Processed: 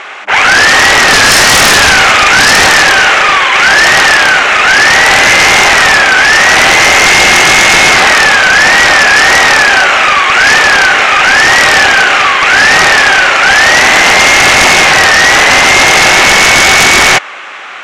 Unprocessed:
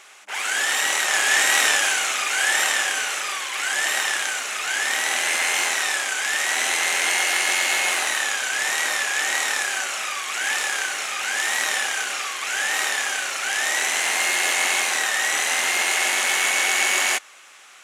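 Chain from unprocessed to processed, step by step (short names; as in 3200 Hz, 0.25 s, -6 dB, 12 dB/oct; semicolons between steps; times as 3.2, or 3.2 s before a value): LPF 2400 Hz 12 dB/oct; sine folder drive 19 dB, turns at -4.5 dBFS; gain +3 dB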